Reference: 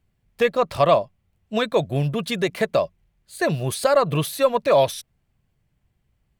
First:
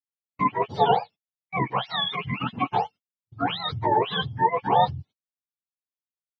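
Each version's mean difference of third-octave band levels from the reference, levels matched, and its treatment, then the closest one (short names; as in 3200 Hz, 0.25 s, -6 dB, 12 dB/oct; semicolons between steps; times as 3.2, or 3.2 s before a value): 13.0 dB: spectrum mirrored in octaves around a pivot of 700 Hz; gate -40 dBFS, range -36 dB; LPF 4700 Hz 24 dB/oct; low shelf 180 Hz -9.5 dB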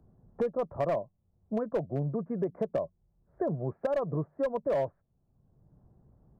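8.5 dB: Gaussian blur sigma 9.5 samples; low shelf 92 Hz -8 dB; overloaded stage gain 15.5 dB; three-band squash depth 70%; gain -7 dB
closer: second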